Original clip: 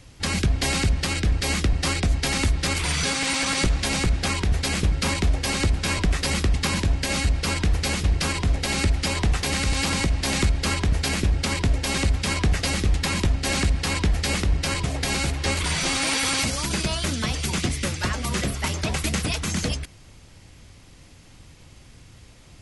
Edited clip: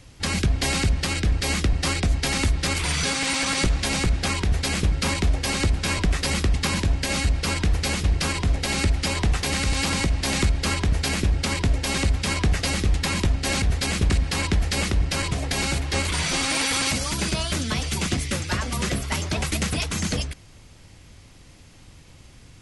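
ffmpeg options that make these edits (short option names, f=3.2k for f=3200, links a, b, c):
-filter_complex "[0:a]asplit=3[a][b][c];[a]atrim=end=13.622[d];[b]atrim=start=4.438:end=4.922[e];[c]atrim=start=13.618[f];[d][e]acrossfade=d=0.004:c1=hsin:c2=hsin[g];[g][f]acrossfade=d=0.004:c1=hsin:c2=hsin"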